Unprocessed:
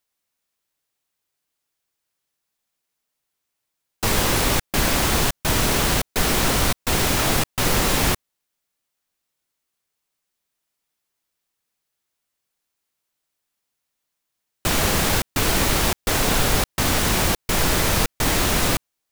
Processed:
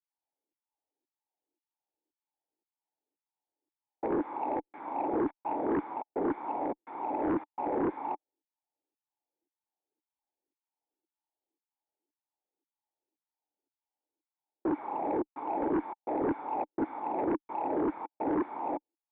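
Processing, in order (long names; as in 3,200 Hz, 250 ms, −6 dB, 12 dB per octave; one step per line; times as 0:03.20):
auto-filter high-pass saw down 1.9 Hz 330–1,700 Hz
formant resonators in series u
harmonic generator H 5 −7 dB, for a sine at −19.5 dBFS
level −3 dB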